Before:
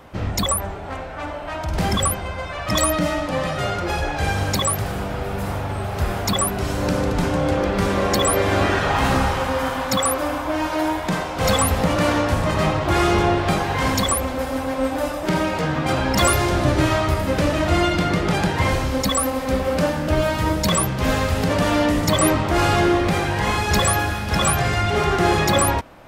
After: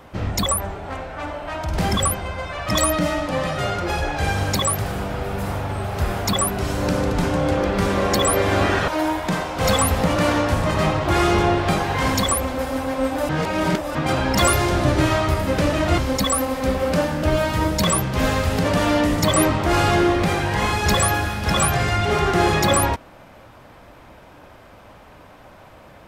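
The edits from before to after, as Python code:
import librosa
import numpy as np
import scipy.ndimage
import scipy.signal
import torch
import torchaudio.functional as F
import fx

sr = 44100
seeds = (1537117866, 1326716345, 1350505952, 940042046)

y = fx.edit(x, sr, fx.cut(start_s=8.88, length_s=1.8),
    fx.reverse_span(start_s=15.09, length_s=0.66),
    fx.cut(start_s=17.78, length_s=1.05), tone=tone)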